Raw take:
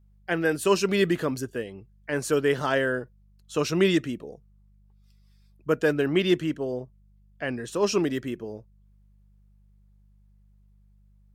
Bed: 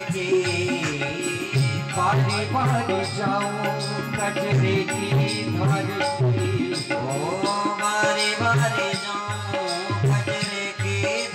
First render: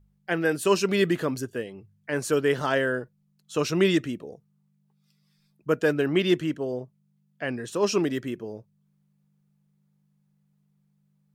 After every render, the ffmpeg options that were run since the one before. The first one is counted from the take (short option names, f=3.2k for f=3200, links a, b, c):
-af "bandreject=f=50:t=h:w=4,bandreject=f=100:t=h:w=4"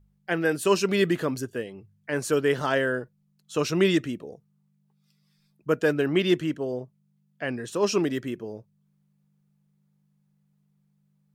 -af anull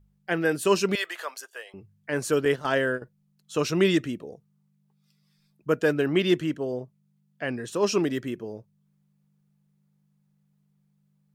-filter_complex "[0:a]asettb=1/sr,asplit=3[a][b][c];[a]atrim=end=0.954[d];[b]atrim=start=0.95:end=1.74,asetpts=PTS-STARTPTS,afade=t=in:d=0.004:c=qsin,afade=t=out:st=0.786:d=0.004:c=qsin,highpass=f=690:w=0.5412,highpass=f=690:w=1.3066[e];[c]atrim=start=1.736[f];[d][e]acrossfade=d=0.004:c1=hsin:c2=qsin[g];[g][f]acrossfade=d=0.004:c1=qsin:c2=hsin,asettb=1/sr,asplit=3[h][i][j];[h]atrim=end=2.454[k];[i]atrim=start=2.45:end=3.02,asetpts=PTS-STARTPTS,afade=t=in:d=0.004:c=qsin,afade=t=out:st=0.566:d=0.004:c=qsin,agate=range=-11dB:threshold=-28dB:ratio=16:release=100:detection=peak[l];[j]atrim=start=3.016[m];[k][l]acrossfade=d=0.004:c1=hsin:c2=qsin[n];[n][m]acrossfade=d=0.004:c1=qsin:c2=hsin"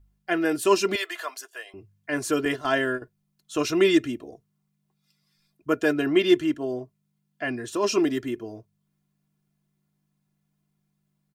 -af "bandreject=f=420:w=12,aecho=1:1:2.9:0.69"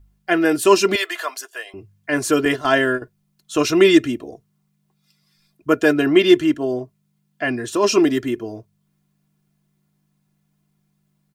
-af "volume=7dB,alimiter=limit=-2dB:level=0:latency=1"